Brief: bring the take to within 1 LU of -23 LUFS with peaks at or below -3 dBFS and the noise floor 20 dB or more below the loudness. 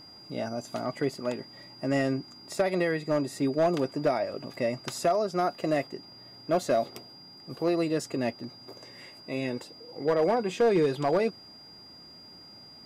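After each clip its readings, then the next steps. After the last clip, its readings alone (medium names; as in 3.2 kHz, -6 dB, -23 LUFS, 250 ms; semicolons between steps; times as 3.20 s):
clipped samples 0.6%; clipping level -18.0 dBFS; steady tone 4.8 kHz; tone level -48 dBFS; loudness -29.0 LUFS; peak level -18.0 dBFS; loudness target -23.0 LUFS
-> clip repair -18 dBFS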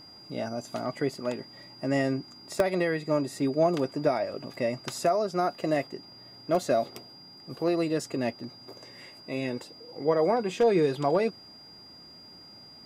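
clipped samples 0.0%; steady tone 4.8 kHz; tone level -48 dBFS
-> band-stop 4.8 kHz, Q 30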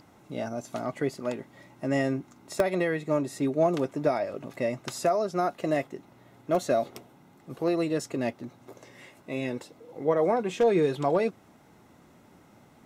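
steady tone not found; loudness -28.5 LUFS; peak level -9.0 dBFS; loudness target -23.0 LUFS
-> trim +5.5 dB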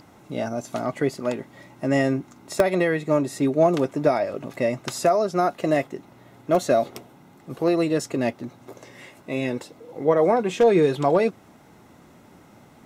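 loudness -23.0 LUFS; peak level -3.5 dBFS; noise floor -52 dBFS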